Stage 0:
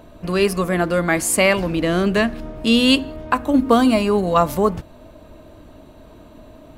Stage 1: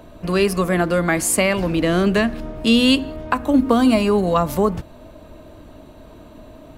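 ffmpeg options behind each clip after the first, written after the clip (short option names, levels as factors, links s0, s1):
-filter_complex "[0:a]acrossover=split=260[s0][s1];[s1]acompressor=threshold=0.158:ratio=6[s2];[s0][s2]amix=inputs=2:normalize=0,volume=1.19"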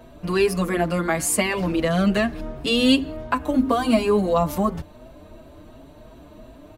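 -filter_complex "[0:a]asplit=2[s0][s1];[s1]adelay=5.9,afreqshift=2.8[s2];[s0][s2]amix=inputs=2:normalize=1"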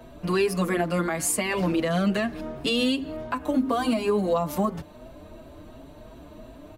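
-filter_complex "[0:a]acrossover=split=120[s0][s1];[s0]acompressor=threshold=0.00631:ratio=6[s2];[s2][s1]amix=inputs=2:normalize=0,alimiter=limit=0.178:level=0:latency=1:release=210"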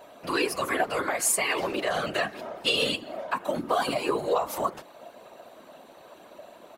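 -af "highpass=530,afftfilt=real='hypot(re,im)*cos(2*PI*random(0))':imag='hypot(re,im)*sin(2*PI*random(1))':win_size=512:overlap=0.75,volume=2.51"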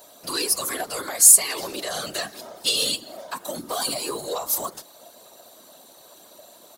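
-af "asoftclip=type=tanh:threshold=0.178,aexciter=amount=6.2:drive=5.4:freq=3700,volume=0.668"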